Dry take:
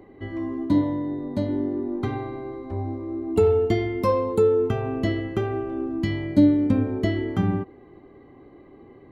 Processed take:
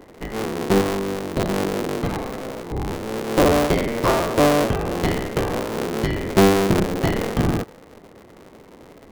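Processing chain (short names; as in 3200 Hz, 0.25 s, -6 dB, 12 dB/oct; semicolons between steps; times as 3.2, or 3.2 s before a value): cycle switcher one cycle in 3, inverted; soft clip -8 dBFS, distortion -24 dB; gain +3 dB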